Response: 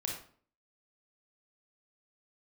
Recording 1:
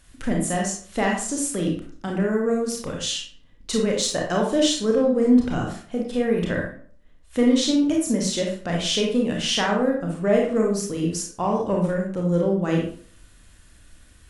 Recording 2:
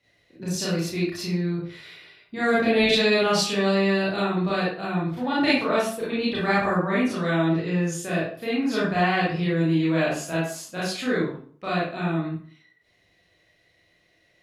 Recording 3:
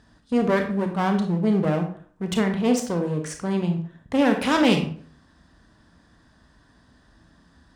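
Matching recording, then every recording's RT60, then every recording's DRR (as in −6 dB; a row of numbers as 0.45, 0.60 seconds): 1; 0.50, 0.50, 0.50 seconds; −0.5, −8.5, 5.0 decibels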